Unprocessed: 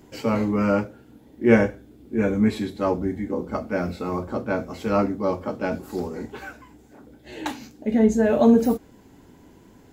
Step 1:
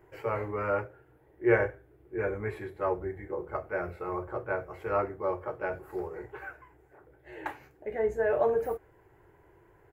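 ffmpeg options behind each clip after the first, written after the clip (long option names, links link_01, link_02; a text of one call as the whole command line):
ffmpeg -i in.wav -af "firequalizer=gain_entry='entry(130,0);entry(240,-25);entry(350,3);entry(500,1);entry(1800,5);entry(3700,-16);entry(6100,-17);entry(11000,-6)':delay=0.05:min_phase=1,volume=-7.5dB" out.wav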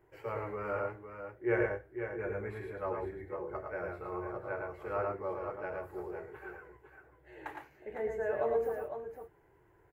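ffmpeg -i in.wav -af "aecho=1:1:91|111|490|506:0.282|0.631|0.112|0.398,volume=-7.5dB" out.wav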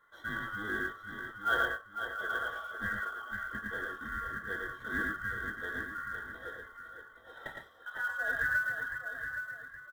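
ffmpeg -i in.wav -af "afftfilt=real='real(if(lt(b,960),b+48*(1-2*mod(floor(b/48),2)),b),0)':imag='imag(if(lt(b,960),b+48*(1-2*mod(floor(b/48),2)),b),0)':win_size=2048:overlap=0.75,aecho=1:1:820:0.376,acrusher=bits=6:mode=log:mix=0:aa=0.000001" out.wav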